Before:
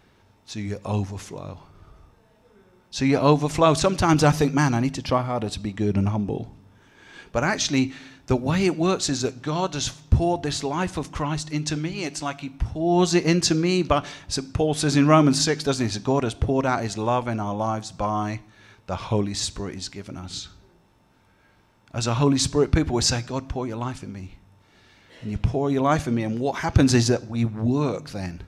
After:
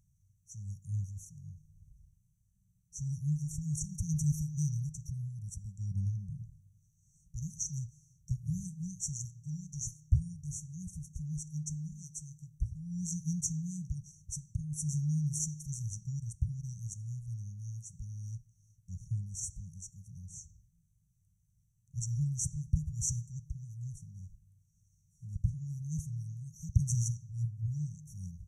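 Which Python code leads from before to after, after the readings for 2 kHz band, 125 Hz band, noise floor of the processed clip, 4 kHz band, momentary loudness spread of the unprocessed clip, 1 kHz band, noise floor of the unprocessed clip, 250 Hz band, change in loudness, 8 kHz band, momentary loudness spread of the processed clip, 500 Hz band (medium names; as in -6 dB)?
under -40 dB, -8.5 dB, -72 dBFS, -26.0 dB, 15 LU, under -40 dB, -59 dBFS, -19.0 dB, -14.5 dB, -8.0 dB, 15 LU, under -40 dB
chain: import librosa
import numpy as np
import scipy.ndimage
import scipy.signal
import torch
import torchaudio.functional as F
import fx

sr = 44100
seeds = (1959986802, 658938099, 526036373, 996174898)

y = fx.brickwall_bandstop(x, sr, low_hz=180.0, high_hz=5600.0)
y = y * 10.0 ** (-8.0 / 20.0)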